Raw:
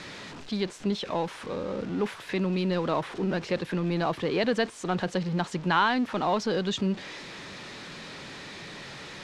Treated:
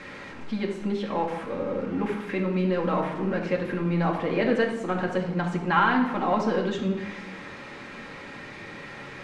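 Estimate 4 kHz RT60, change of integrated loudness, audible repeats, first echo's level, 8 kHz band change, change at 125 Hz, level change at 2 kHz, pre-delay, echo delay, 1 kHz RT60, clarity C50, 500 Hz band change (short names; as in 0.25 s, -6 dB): 0.70 s, +2.0 dB, none, none, n/a, +2.0 dB, +2.5 dB, 4 ms, none, 0.95 s, 6.0 dB, +2.5 dB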